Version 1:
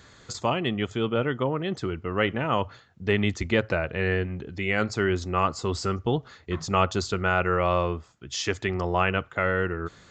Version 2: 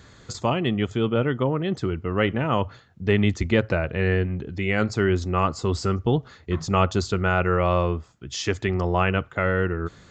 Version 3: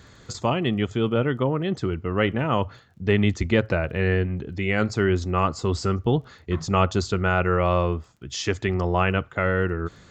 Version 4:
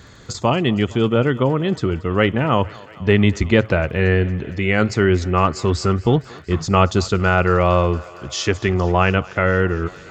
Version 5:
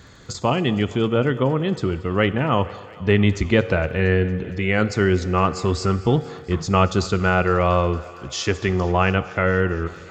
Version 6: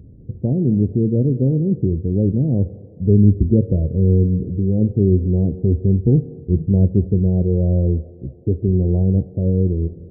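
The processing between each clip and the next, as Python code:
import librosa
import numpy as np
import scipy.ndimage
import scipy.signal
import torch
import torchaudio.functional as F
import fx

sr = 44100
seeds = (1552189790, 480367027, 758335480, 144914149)

y1 = fx.low_shelf(x, sr, hz=380.0, db=6.0)
y2 = fx.dmg_crackle(y1, sr, seeds[0], per_s=18.0, level_db=-48.0)
y3 = fx.echo_thinned(y2, sr, ms=230, feedback_pct=81, hz=310.0, wet_db=-21.5)
y3 = y3 * librosa.db_to_amplitude(5.5)
y4 = fx.rev_fdn(y3, sr, rt60_s=1.6, lf_ratio=0.75, hf_ratio=1.0, size_ms=12.0, drr_db=14.0)
y4 = y4 * librosa.db_to_amplitude(-2.5)
y5 = scipy.ndimage.gaussian_filter1d(y4, 24.0, mode='constant')
y5 = y5 * librosa.db_to_amplitude(7.5)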